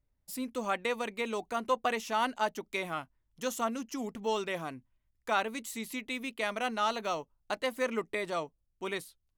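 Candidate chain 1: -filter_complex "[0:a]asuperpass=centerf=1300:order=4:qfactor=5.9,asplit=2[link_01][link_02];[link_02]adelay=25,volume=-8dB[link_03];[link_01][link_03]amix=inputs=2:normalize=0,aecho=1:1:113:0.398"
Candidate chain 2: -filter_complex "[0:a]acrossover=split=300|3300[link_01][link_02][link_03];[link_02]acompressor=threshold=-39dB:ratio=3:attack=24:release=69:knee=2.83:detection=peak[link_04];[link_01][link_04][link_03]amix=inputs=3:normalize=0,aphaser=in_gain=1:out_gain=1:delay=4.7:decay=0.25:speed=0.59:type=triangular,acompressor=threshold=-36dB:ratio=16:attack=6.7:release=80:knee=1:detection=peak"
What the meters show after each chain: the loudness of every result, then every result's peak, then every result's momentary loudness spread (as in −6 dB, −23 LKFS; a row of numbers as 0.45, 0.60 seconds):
−42.0, −41.0 LKFS; −24.0, −21.0 dBFS; 16, 6 LU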